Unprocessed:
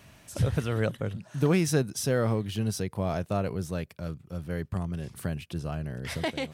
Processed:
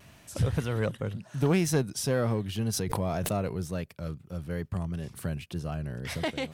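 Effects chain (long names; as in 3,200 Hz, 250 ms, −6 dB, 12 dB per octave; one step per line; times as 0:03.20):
one-sided soft clipper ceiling −14 dBFS
tape wow and flutter 50 cents
0:02.73–0:03.51: background raised ahead of every attack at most 21 dB per second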